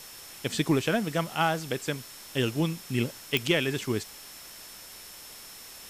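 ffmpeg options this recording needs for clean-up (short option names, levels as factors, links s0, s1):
-af "adeclick=t=4,bandreject=f=5400:w=30,afwtdn=0.0056"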